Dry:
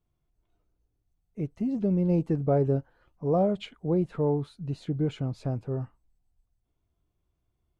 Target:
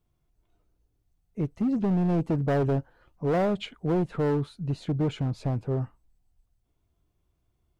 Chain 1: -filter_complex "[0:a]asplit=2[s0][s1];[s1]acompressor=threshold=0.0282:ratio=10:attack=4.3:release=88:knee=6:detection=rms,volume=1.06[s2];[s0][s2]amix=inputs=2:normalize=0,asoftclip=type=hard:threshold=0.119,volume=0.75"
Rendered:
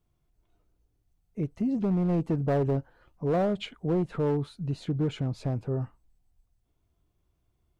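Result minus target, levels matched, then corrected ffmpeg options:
compression: peak gain reduction +9.5 dB
-filter_complex "[0:a]asplit=2[s0][s1];[s1]acompressor=threshold=0.1:ratio=10:attack=4.3:release=88:knee=6:detection=rms,volume=1.06[s2];[s0][s2]amix=inputs=2:normalize=0,asoftclip=type=hard:threshold=0.119,volume=0.75"

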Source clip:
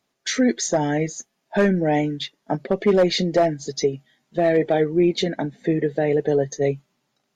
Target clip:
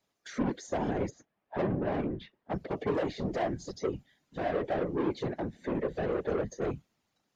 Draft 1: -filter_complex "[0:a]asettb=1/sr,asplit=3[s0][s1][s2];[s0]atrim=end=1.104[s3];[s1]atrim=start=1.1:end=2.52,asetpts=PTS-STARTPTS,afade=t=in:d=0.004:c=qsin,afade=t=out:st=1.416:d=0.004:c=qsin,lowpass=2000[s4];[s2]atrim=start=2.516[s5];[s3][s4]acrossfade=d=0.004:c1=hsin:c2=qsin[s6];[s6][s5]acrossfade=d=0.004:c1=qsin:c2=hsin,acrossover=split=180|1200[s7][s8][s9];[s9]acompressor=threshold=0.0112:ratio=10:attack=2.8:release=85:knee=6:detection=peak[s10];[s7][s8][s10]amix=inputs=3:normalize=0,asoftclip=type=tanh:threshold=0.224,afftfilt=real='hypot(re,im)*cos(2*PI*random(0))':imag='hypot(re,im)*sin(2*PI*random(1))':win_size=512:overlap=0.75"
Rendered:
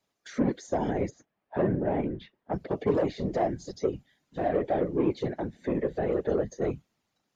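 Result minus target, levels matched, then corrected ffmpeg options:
saturation: distortion -8 dB
-filter_complex "[0:a]asettb=1/sr,asplit=3[s0][s1][s2];[s0]atrim=end=1.104[s3];[s1]atrim=start=1.1:end=2.52,asetpts=PTS-STARTPTS,afade=t=in:d=0.004:c=qsin,afade=t=out:st=1.416:d=0.004:c=qsin,lowpass=2000[s4];[s2]atrim=start=2.516[s5];[s3][s4]acrossfade=d=0.004:c1=hsin:c2=qsin[s6];[s6][s5]acrossfade=d=0.004:c1=qsin:c2=hsin,acrossover=split=180|1200[s7][s8][s9];[s9]acompressor=threshold=0.0112:ratio=10:attack=2.8:release=85:knee=6:detection=peak[s10];[s7][s8][s10]amix=inputs=3:normalize=0,asoftclip=type=tanh:threshold=0.0891,afftfilt=real='hypot(re,im)*cos(2*PI*random(0))':imag='hypot(re,im)*sin(2*PI*random(1))':win_size=512:overlap=0.75"

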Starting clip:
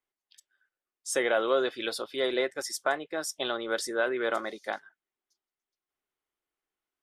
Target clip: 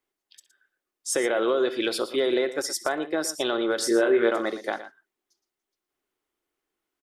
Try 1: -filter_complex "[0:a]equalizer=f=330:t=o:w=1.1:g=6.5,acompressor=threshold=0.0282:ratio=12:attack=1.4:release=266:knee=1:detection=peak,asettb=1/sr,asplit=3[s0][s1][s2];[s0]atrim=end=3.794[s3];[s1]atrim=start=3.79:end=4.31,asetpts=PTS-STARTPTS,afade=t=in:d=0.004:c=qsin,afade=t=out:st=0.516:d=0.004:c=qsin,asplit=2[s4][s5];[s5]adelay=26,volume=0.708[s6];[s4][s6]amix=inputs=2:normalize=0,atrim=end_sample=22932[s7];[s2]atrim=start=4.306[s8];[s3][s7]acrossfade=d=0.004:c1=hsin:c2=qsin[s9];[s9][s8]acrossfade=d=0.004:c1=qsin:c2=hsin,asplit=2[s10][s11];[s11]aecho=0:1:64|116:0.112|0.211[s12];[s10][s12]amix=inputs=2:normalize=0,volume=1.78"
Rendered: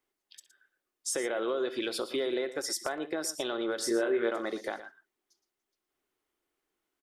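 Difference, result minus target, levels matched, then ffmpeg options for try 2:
compression: peak gain reduction +8 dB
-filter_complex "[0:a]equalizer=f=330:t=o:w=1.1:g=6.5,acompressor=threshold=0.075:ratio=12:attack=1.4:release=266:knee=1:detection=peak,asettb=1/sr,asplit=3[s0][s1][s2];[s0]atrim=end=3.794[s3];[s1]atrim=start=3.79:end=4.31,asetpts=PTS-STARTPTS,afade=t=in:d=0.004:c=qsin,afade=t=out:st=0.516:d=0.004:c=qsin,asplit=2[s4][s5];[s5]adelay=26,volume=0.708[s6];[s4][s6]amix=inputs=2:normalize=0,atrim=end_sample=22932[s7];[s2]atrim=start=4.306[s8];[s3][s7]acrossfade=d=0.004:c1=hsin:c2=qsin[s9];[s9][s8]acrossfade=d=0.004:c1=qsin:c2=hsin,asplit=2[s10][s11];[s11]aecho=0:1:64|116:0.112|0.211[s12];[s10][s12]amix=inputs=2:normalize=0,volume=1.78"

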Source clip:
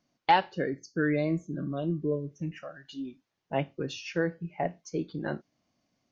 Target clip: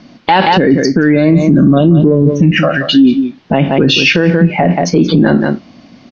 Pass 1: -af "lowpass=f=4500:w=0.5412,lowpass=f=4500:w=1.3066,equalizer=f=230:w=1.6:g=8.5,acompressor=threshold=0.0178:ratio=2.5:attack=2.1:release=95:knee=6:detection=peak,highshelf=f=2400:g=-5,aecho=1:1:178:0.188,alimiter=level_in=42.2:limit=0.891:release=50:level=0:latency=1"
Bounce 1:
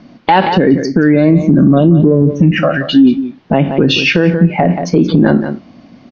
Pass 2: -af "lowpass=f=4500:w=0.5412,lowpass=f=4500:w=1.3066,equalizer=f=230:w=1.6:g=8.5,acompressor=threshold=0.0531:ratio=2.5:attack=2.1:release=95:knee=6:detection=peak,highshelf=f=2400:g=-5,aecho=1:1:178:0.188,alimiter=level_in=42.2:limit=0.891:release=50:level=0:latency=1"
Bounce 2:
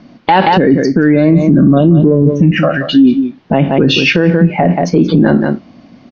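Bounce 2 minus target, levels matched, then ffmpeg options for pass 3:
4 kHz band -3.0 dB
-af "lowpass=f=4500:w=0.5412,lowpass=f=4500:w=1.3066,equalizer=f=230:w=1.6:g=8.5,acompressor=threshold=0.0531:ratio=2.5:attack=2.1:release=95:knee=6:detection=peak,highshelf=f=2400:g=3.5,aecho=1:1:178:0.188,alimiter=level_in=42.2:limit=0.891:release=50:level=0:latency=1"

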